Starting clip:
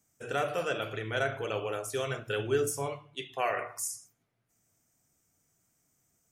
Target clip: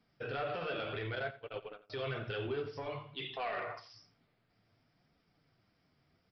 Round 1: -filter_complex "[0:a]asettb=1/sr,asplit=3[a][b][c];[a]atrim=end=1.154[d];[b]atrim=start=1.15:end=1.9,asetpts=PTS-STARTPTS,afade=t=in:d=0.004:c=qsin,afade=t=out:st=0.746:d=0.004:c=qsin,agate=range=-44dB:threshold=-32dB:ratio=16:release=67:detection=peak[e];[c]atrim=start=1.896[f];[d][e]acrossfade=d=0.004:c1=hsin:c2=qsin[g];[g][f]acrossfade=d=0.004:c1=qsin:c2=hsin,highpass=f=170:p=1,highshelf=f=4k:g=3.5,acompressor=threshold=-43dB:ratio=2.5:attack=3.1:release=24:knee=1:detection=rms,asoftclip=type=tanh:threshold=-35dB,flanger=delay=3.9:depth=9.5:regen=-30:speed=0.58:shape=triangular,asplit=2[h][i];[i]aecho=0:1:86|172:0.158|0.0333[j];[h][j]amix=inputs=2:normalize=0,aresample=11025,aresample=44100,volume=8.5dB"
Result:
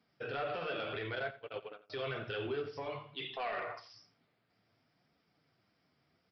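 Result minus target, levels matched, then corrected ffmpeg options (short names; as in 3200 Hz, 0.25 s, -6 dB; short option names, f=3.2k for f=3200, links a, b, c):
125 Hz band -4.0 dB
-filter_complex "[0:a]asettb=1/sr,asplit=3[a][b][c];[a]atrim=end=1.154[d];[b]atrim=start=1.15:end=1.9,asetpts=PTS-STARTPTS,afade=t=in:d=0.004:c=qsin,afade=t=out:st=0.746:d=0.004:c=qsin,agate=range=-44dB:threshold=-32dB:ratio=16:release=67:detection=peak[e];[c]atrim=start=1.896[f];[d][e]acrossfade=d=0.004:c1=hsin:c2=qsin[g];[g][f]acrossfade=d=0.004:c1=qsin:c2=hsin,highshelf=f=4k:g=3.5,acompressor=threshold=-43dB:ratio=2.5:attack=3.1:release=24:knee=1:detection=rms,asoftclip=type=tanh:threshold=-35dB,flanger=delay=3.9:depth=9.5:regen=-30:speed=0.58:shape=triangular,asplit=2[h][i];[i]aecho=0:1:86|172:0.158|0.0333[j];[h][j]amix=inputs=2:normalize=0,aresample=11025,aresample=44100,volume=8.5dB"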